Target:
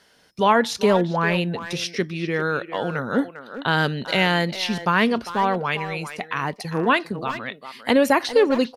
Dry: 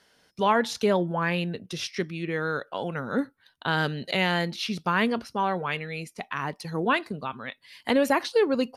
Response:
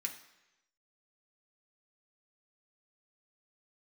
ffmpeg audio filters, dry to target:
-filter_complex "[0:a]asplit=2[s0][s1];[s1]adelay=400,highpass=300,lowpass=3400,asoftclip=type=hard:threshold=0.0891,volume=0.316[s2];[s0][s2]amix=inputs=2:normalize=0,volume=1.78"

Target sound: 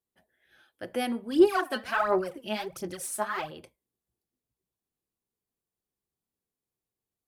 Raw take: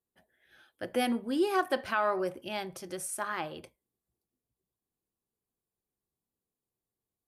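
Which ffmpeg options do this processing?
-filter_complex "[0:a]asplit=3[s0][s1][s2];[s0]afade=t=out:st=1.3:d=0.02[s3];[s1]aphaser=in_gain=1:out_gain=1:delay=4.7:decay=0.72:speed=1.4:type=sinusoidal,afade=t=in:st=1.3:d=0.02,afade=t=out:st=3.5:d=0.02[s4];[s2]afade=t=in:st=3.5:d=0.02[s5];[s3][s4][s5]amix=inputs=3:normalize=0,volume=0.891"

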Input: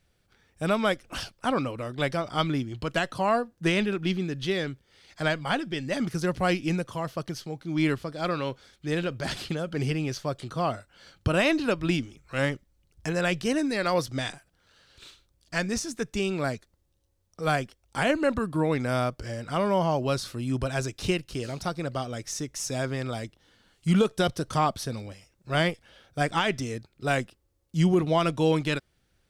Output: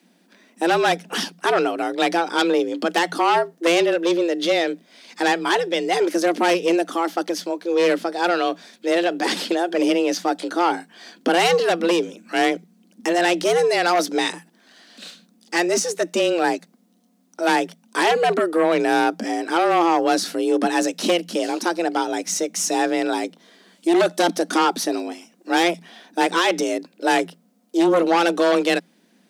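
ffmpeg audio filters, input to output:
-af "aeval=exprs='0.282*(cos(1*acos(clip(val(0)/0.282,-1,1)))-cos(1*PI/2))+0.126*(cos(5*acos(clip(val(0)/0.282,-1,1)))-cos(5*PI/2))':c=same,afreqshift=170"

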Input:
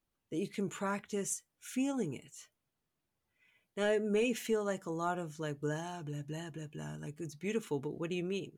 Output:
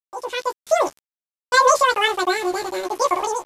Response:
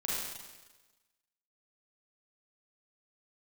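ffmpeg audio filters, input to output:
-filter_complex "[0:a]highpass=72,aresample=11025,aeval=exprs='val(0)*gte(abs(val(0)),0.00355)':c=same,aresample=44100,dynaudnorm=f=470:g=5:m=4.47,asetrate=109368,aresample=44100,acontrast=31,asplit=2[s0][s1];[s1]adelay=14,volume=0.708[s2];[s0][s2]amix=inputs=2:normalize=0,volume=0.75"

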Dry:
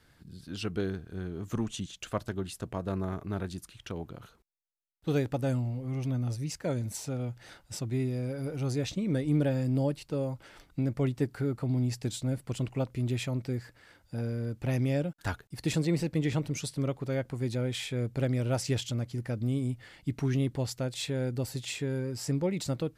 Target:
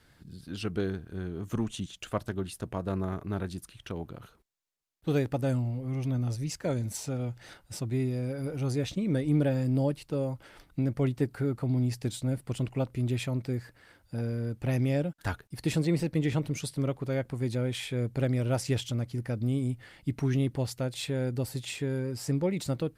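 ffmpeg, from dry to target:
-af "acontrast=45,volume=0.596" -ar 48000 -c:a libopus -b:a 48k

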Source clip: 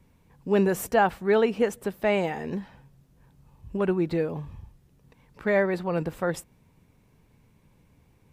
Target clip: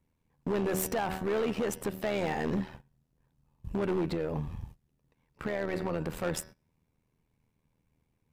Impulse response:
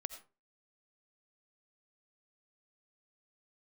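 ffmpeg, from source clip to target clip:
-filter_complex "[0:a]aeval=exprs='if(lt(val(0),0),0.708*val(0),val(0))':c=same,bandreject=f=188.8:t=h:w=4,bandreject=f=377.6:t=h:w=4,bandreject=f=566.4:t=h:w=4,bandreject=f=755.2:t=h:w=4,bandreject=f=944:t=h:w=4,bandreject=f=1132.8:t=h:w=4,bandreject=f=1321.6:t=h:w=4,bandreject=f=1510.4:t=h:w=4,bandreject=f=1699.2:t=h:w=4,bandreject=f=1888:t=h:w=4,bandreject=f=2076.8:t=h:w=4,bandreject=f=2265.6:t=h:w=4,bandreject=f=2454.4:t=h:w=4,bandreject=f=2643.2:t=h:w=4,bandreject=f=2832:t=h:w=4,bandreject=f=3020.8:t=h:w=4,bandreject=f=3209.6:t=h:w=4,bandreject=f=3398.4:t=h:w=4,bandreject=f=3587.2:t=h:w=4,bandreject=f=3776:t=h:w=4,bandreject=f=3964.8:t=h:w=4,bandreject=f=4153.6:t=h:w=4,bandreject=f=4342.4:t=h:w=4,bandreject=f=4531.2:t=h:w=4,bandreject=f=4720:t=h:w=4,bandreject=f=4908.8:t=h:w=4,bandreject=f=5097.6:t=h:w=4,bandreject=f=5286.4:t=h:w=4,bandreject=f=5475.2:t=h:w=4,bandreject=f=5664:t=h:w=4,bandreject=f=5852.8:t=h:w=4,agate=range=0.126:threshold=0.00355:ratio=16:detection=peak,alimiter=limit=0.0631:level=0:latency=1:release=86,asettb=1/sr,asplit=3[s0][s1][s2];[s0]atrim=end=4.074[s3];[s1]atrim=start=4.07:end=6.1,asetpts=PTS-STARTPTS,afade=t=in:d=0.004:c=qsin,afade=t=out:st=2.026:d=0.004:c=qsin,acompressor=threshold=0.02:ratio=4[s4];[s2]atrim=start=6.096[s5];[s3][s4]acrossfade=d=0.004:c1=hsin:c2=qsin[s6];[s6][s5]acrossfade=d=0.004:c1=qsin:c2=hsin,tremolo=f=79:d=0.71,asoftclip=type=hard:threshold=0.0211,volume=2.51"

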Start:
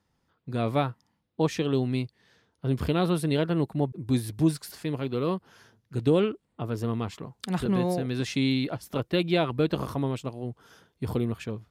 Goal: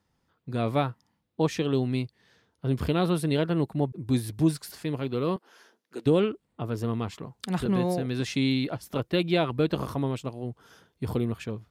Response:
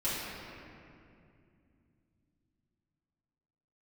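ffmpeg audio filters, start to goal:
-filter_complex "[0:a]asettb=1/sr,asplit=3[s0][s1][s2];[s0]atrim=end=5.364[s3];[s1]atrim=start=5.36:end=6.06,asetpts=PTS-STARTPTS,afade=t=in:d=0.004:c=qsin,afade=t=out:st=0.696:d=0.004:c=qsin,highpass=f=290:w=0.5412,highpass=f=290:w=1.3066[s4];[s2]atrim=start=6.056[s5];[s3][s4]acrossfade=d=0.004:c1=hsin:c2=qsin[s6];[s6][s5]acrossfade=d=0.004:c1=qsin:c2=hsin"

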